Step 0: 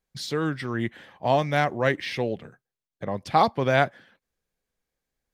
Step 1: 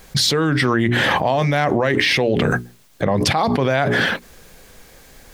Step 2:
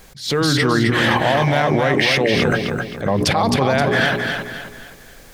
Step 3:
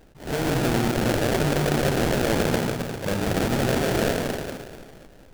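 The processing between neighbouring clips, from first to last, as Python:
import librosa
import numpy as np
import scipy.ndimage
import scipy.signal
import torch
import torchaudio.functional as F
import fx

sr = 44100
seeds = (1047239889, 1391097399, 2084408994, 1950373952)

y1 = fx.hum_notches(x, sr, base_hz=60, count=7)
y1 = fx.env_flatten(y1, sr, amount_pct=100)
y1 = F.gain(torch.from_numpy(y1), -1.5).numpy()
y2 = fx.echo_feedback(y1, sr, ms=263, feedback_pct=38, wet_db=-5.0)
y2 = fx.attack_slew(y2, sr, db_per_s=140.0)
y3 = y2 + 10.0 ** (-3.5 / 20.0) * np.pad(y2, (int(152 * sr / 1000.0), 0))[:len(y2)]
y3 = fx.sample_hold(y3, sr, seeds[0], rate_hz=1100.0, jitter_pct=20)
y3 = F.gain(torch.from_numpy(y3), -7.5).numpy()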